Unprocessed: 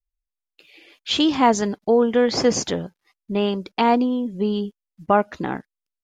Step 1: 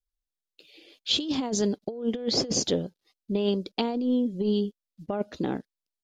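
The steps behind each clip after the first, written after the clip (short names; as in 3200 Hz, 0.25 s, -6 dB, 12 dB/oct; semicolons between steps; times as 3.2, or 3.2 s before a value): graphic EQ 250/500/1000/2000/4000 Hz +3/+5/-7/-7/+7 dB; negative-ratio compressor -18 dBFS, ratio -0.5; gain -7 dB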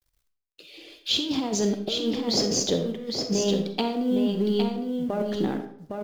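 G.711 law mismatch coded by mu; echo 0.81 s -5 dB; reverb RT60 0.60 s, pre-delay 5 ms, DRR 6.5 dB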